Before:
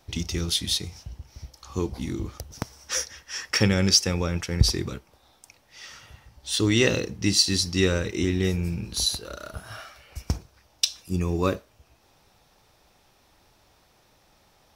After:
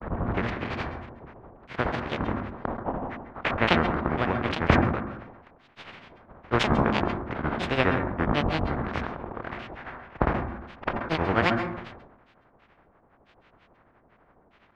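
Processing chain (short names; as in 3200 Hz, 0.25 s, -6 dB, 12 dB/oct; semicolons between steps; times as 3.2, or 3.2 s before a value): spectral contrast lowered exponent 0.28; LPF 1700 Hz 24 dB/oct; in parallel at +1 dB: compressor, threshold -36 dBFS, peak gain reduction 19.5 dB; on the sum: grains, grains 12/s, pitch spread up and down by 12 st; on a send at -12 dB: reverb RT60 0.35 s, pre-delay 0.129 s; on the sum: sustainer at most 51 dB/s; gain +3 dB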